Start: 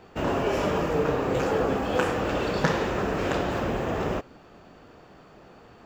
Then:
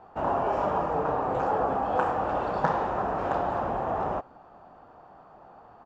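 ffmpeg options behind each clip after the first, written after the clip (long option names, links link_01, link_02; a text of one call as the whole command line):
ffmpeg -i in.wav -af "firequalizer=gain_entry='entry(430,0);entry(770,14);entry(2100,-6);entry(12000,-16)':delay=0.05:min_phase=1,volume=-7dB" out.wav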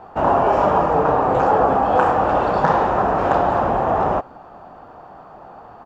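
ffmpeg -i in.wav -af "alimiter=level_in=11.5dB:limit=-1dB:release=50:level=0:latency=1,volume=-1dB" out.wav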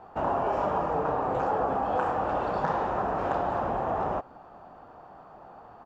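ffmpeg -i in.wav -af "acompressor=threshold=-21dB:ratio=1.5,volume=-8dB" out.wav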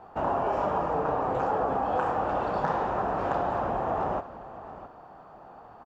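ffmpeg -i in.wav -af "aecho=1:1:667:0.188" out.wav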